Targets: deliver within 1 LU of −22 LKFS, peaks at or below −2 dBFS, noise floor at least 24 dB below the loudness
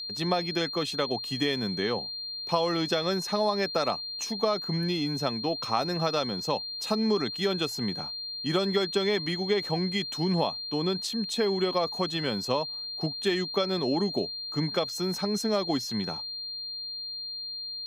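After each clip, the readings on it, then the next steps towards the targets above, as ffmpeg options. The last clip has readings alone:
interfering tone 4,200 Hz; level of the tone −34 dBFS; integrated loudness −28.5 LKFS; sample peak −10.5 dBFS; target loudness −22.0 LKFS
→ -af "bandreject=frequency=4200:width=30"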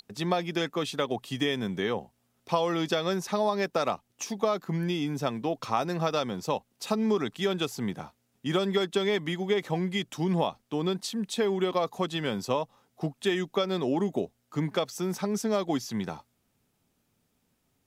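interfering tone none found; integrated loudness −29.5 LKFS; sample peak −11.0 dBFS; target loudness −22.0 LKFS
→ -af "volume=7.5dB"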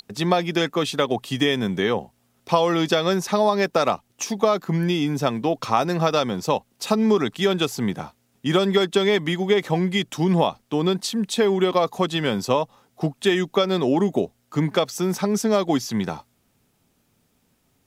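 integrated loudness −22.0 LKFS; sample peak −3.5 dBFS; background noise floor −67 dBFS

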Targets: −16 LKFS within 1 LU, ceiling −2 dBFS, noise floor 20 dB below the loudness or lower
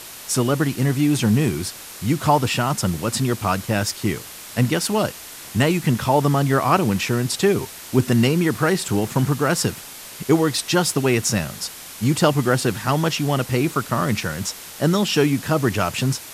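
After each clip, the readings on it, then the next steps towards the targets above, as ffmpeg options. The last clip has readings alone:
background noise floor −38 dBFS; target noise floor −41 dBFS; integrated loudness −20.5 LKFS; sample peak −3.5 dBFS; target loudness −16.0 LKFS
→ -af "afftdn=noise_reduction=6:noise_floor=-38"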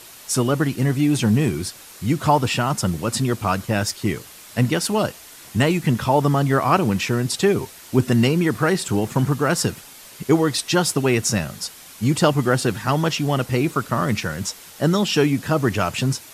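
background noise floor −43 dBFS; integrated loudness −20.5 LKFS; sample peak −3.5 dBFS; target loudness −16.0 LKFS
→ -af "volume=4.5dB,alimiter=limit=-2dB:level=0:latency=1"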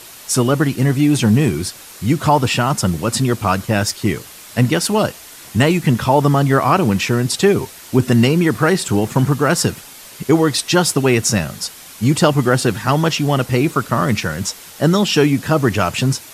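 integrated loudness −16.5 LKFS; sample peak −2.0 dBFS; background noise floor −38 dBFS

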